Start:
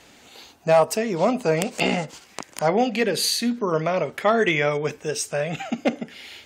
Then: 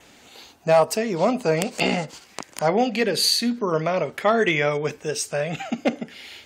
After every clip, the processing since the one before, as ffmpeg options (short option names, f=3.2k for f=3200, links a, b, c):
-af "adynamicequalizer=threshold=0.00501:dfrequency=4500:dqfactor=7:tfrequency=4500:tqfactor=7:attack=5:release=100:ratio=0.375:range=2.5:mode=boostabove:tftype=bell"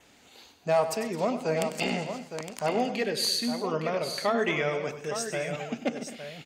-af "aecho=1:1:97|131|214|266|862:0.266|0.106|0.158|0.1|0.355,volume=-7.5dB"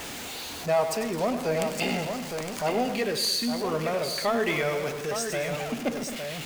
-af "aeval=exprs='val(0)+0.5*0.0282*sgn(val(0))':c=same,volume=-1dB"